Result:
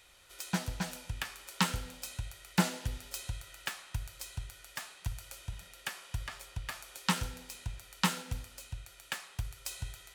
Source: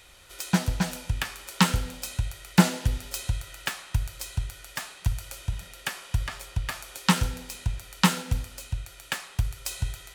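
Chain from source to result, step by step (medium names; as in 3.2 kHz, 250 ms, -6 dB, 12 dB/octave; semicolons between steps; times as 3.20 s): bass shelf 370 Hz -4.5 dB; trim -7 dB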